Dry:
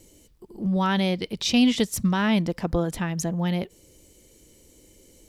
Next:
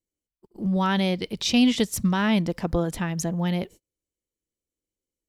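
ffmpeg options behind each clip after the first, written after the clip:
-af "agate=range=0.0141:threshold=0.00794:ratio=16:detection=peak"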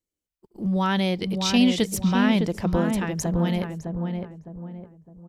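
-filter_complex "[0:a]asplit=2[s0][s1];[s1]adelay=609,lowpass=f=1100:p=1,volume=0.631,asplit=2[s2][s3];[s3]adelay=609,lowpass=f=1100:p=1,volume=0.38,asplit=2[s4][s5];[s5]adelay=609,lowpass=f=1100:p=1,volume=0.38,asplit=2[s6][s7];[s7]adelay=609,lowpass=f=1100:p=1,volume=0.38,asplit=2[s8][s9];[s9]adelay=609,lowpass=f=1100:p=1,volume=0.38[s10];[s0][s2][s4][s6][s8][s10]amix=inputs=6:normalize=0"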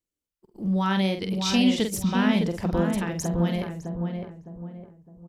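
-filter_complex "[0:a]asplit=2[s0][s1];[s1]adelay=47,volume=0.473[s2];[s0][s2]amix=inputs=2:normalize=0,volume=0.75"

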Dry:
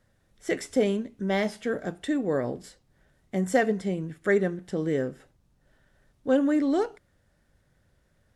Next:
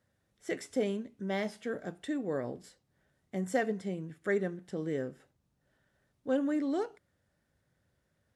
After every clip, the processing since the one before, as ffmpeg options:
-af "highpass=74,volume=0.422"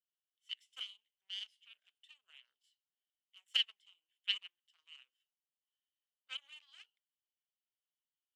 -af "aeval=exprs='0.141*(cos(1*acos(clip(val(0)/0.141,-1,1)))-cos(1*PI/2))+0.0501*(cos(3*acos(clip(val(0)/0.141,-1,1)))-cos(3*PI/2))+0.00355*(cos(4*acos(clip(val(0)/0.141,-1,1)))-cos(4*PI/2))':c=same,highpass=f=3000:t=q:w=13,volume=0.75"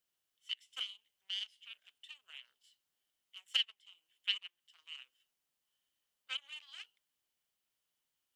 -af "acompressor=threshold=0.002:ratio=1.5,volume=2.82"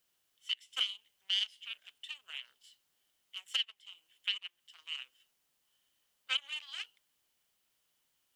-af "alimiter=level_in=1.5:limit=0.0631:level=0:latency=1:release=302,volume=0.668,volume=2.51"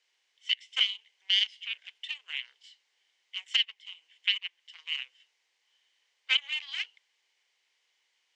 -af "highpass=f=450:w=0.5412,highpass=f=450:w=1.3066,equalizer=f=630:t=q:w=4:g=-9,equalizer=f=1300:t=q:w=4:g=-8,equalizer=f=2100:t=q:w=4:g=9,lowpass=f=6400:w=0.5412,lowpass=f=6400:w=1.3066,volume=2"

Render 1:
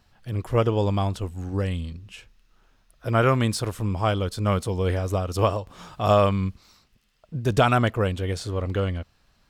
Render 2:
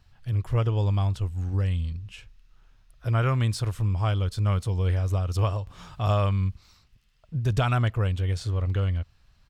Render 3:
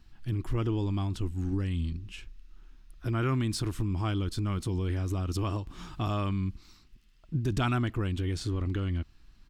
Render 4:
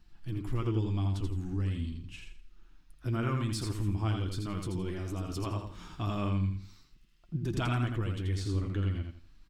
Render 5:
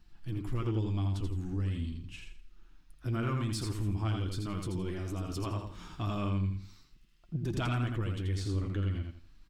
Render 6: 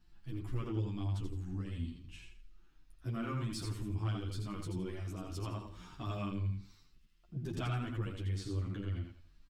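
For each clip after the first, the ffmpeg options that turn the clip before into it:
-af "firequalizer=gain_entry='entry(110,0);entry(210,-11);entry(490,-12);entry(1000,-9);entry(2600,-7);entry(11000,-11)':delay=0.05:min_phase=1,acompressor=threshold=0.0282:ratio=1.5,volume=1.88"
-af "lowshelf=f=410:t=q:w=3:g=7.5,alimiter=limit=0.224:level=0:latency=1:release=27,equalizer=f=100:t=o:w=1.7:g=-12.5"
-filter_complex "[0:a]flanger=delay=5.6:depth=4.6:regen=47:speed=0.41:shape=sinusoidal,asplit=2[s0][s1];[s1]aecho=0:1:83|166|249|332:0.562|0.157|0.0441|0.0123[s2];[s0][s2]amix=inputs=2:normalize=0"
-af "asoftclip=type=tanh:threshold=0.075"
-filter_complex "[0:a]asplit=2[s0][s1];[s1]adelay=9.9,afreqshift=2.8[s2];[s0][s2]amix=inputs=2:normalize=1,volume=0.794"

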